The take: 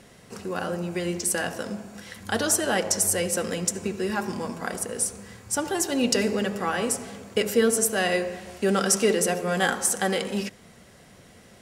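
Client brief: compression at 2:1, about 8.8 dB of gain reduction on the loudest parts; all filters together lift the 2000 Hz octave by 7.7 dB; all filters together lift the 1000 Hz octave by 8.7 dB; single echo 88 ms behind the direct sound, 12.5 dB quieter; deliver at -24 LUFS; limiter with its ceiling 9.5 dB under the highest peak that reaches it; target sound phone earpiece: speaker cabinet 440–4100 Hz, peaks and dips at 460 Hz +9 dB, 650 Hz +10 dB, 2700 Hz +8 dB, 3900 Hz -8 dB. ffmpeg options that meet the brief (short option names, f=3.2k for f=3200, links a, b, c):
-af "equalizer=f=1k:t=o:g=6.5,equalizer=f=2k:t=o:g=6,acompressor=threshold=-31dB:ratio=2,alimiter=limit=-21dB:level=0:latency=1,highpass=440,equalizer=f=460:t=q:w=4:g=9,equalizer=f=650:t=q:w=4:g=10,equalizer=f=2.7k:t=q:w=4:g=8,equalizer=f=3.9k:t=q:w=4:g=-8,lowpass=f=4.1k:w=0.5412,lowpass=f=4.1k:w=1.3066,aecho=1:1:88:0.237,volume=6.5dB"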